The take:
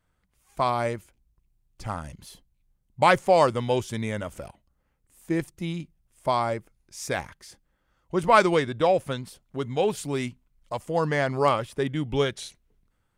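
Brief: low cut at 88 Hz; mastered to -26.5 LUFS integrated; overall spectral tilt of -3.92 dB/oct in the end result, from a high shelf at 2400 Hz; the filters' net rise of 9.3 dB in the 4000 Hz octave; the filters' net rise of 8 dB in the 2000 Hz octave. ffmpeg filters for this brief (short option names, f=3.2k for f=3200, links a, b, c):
-af "highpass=88,equalizer=f=2k:t=o:g=7.5,highshelf=f=2.4k:g=3,equalizer=f=4k:t=o:g=6.5,volume=-3.5dB"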